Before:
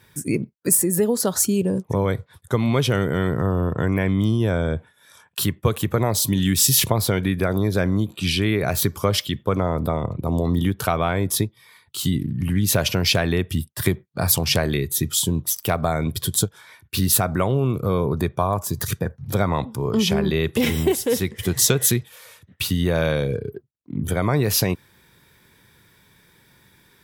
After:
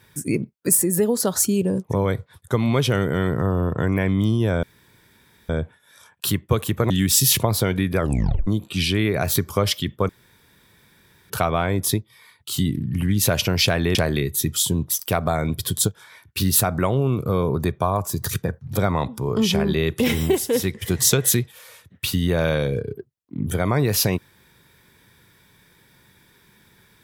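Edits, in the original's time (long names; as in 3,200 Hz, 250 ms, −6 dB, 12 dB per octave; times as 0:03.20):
0:04.63: splice in room tone 0.86 s
0:06.04–0:06.37: remove
0:07.45: tape stop 0.49 s
0:09.56–0:10.77: fill with room tone
0:13.42–0:14.52: remove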